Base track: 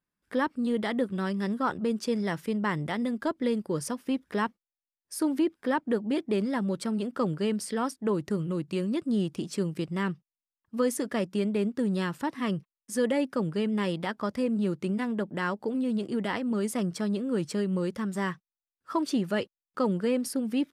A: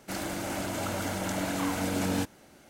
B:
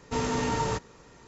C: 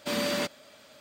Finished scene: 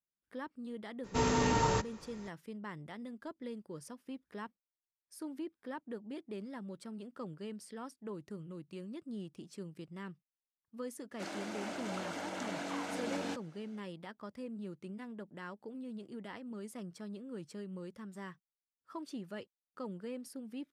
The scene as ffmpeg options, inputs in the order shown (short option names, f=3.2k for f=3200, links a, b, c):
-filter_complex "[0:a]volume=-16dB[a];[1:a]highpass=260,lowpass=6k[b];[2:a]atrim=end=1.27,asetpts=PTS-STARTPTS,volume=-1.5dB,afade=t=in:d=0.02,afade=t=out:st=1.25:d=0.02,adelay=1030[c];[b]atrim=end=2.69,asetpts=PTS-STARTPTS,volume=-7dB,afade=t=in:d=0.004:c=hsin,afade=t=out:st=2.686:d=0.004:c=hsin,adelay=11110[d];[a][c][d]amix=inputs=3:normalize=0"